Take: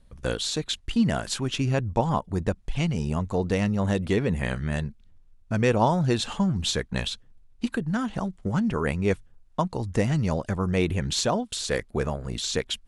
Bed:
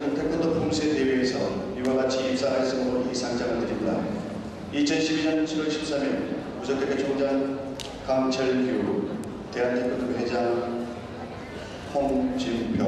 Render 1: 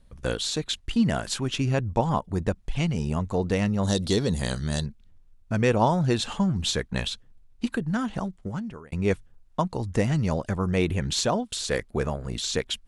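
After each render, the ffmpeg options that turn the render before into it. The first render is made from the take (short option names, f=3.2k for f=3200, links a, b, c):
-filter_complex "[0:a]asettb=1/sr,asplit=3[a][b][c];[a]atrim=end=3.834[d];[b]atrim=start=3.83:end=4.86,asetpts=PTS-STARTPTS,afade=t=in:d=0.004:c=qsin,afade=t=out:st=1.026:d=0.004:c=qsin,highshelf=f=3.2k:t=q:w=3:g=9.5[e];[c]atrim=start=4.856[f];[d][e]acrossfade=d=0.004:c1=hsin:c2=qsin[g];[g][f]acrossfade=d=0.004:c1=qsin:c2=hsin,asplit=2[h][i];[h]atrim=end=8.92,asetpts=PTS-STARTPTS,afade=t=out:st=8.14:d=0.78[j];[i]atrim=start=8.92,asetpts=PTS-STARTPTS,afade=t=in:d=0.004:c=hsin[k];[j][k]concat=n=2:v=0:a=1"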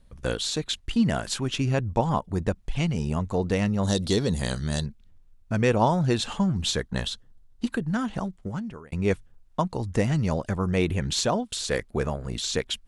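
-filter_complex "[0:a]asettb=1/sr,asplit=3[a][b][c];[a]atrim=end=6.774[d];[b]atrim=start=6.77:end=7.68,asetpts=PTS-STARTPTS,afade=t=in:d=0.004:c=qsin,afade=t=out:st=0.906:d=0.004:c=qsin,equalizer=f=2.4k:t=o:w=0.22:g=-11[e];[c]atrim=start=7.676[f];[d][e]acrossfade=d=0.004:c1=hsin:c2=qsin[g];[g][f]acrossfade=d=0.004:c1=qsin:c2=hsin"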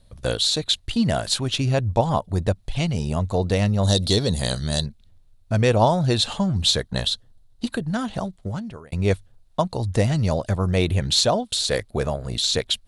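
-af "equalizer=f=100:t=o:w=0.67:g=8,equalizer=f=630:t=o:w=0.67:g=7,equalizer=f=4k:t=o:w=0.67:g=10,equalizer=f=10k:t=o:w=0.67:g=8"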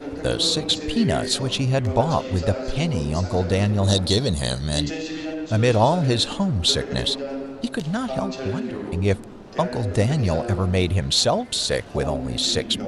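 -filter_complex "[1:a]volume=-5.5dB[a];[0:a][a]amix=inputs=2:normalize=0"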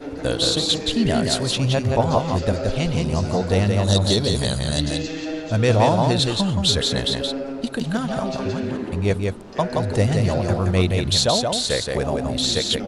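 -af "aecho=1:1:173:0.631"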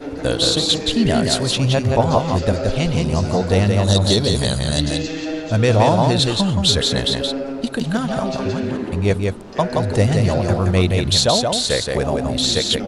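-af "volume=3dB,alimiter=limit=-3dB:level=0:latency=1"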